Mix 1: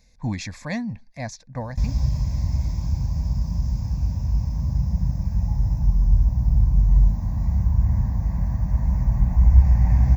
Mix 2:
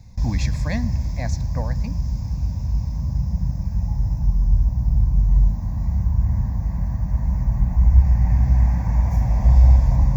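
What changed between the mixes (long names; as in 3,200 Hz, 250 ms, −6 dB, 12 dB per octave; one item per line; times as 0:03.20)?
background: entry −1.60 s
reverb: on, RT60 1.9 s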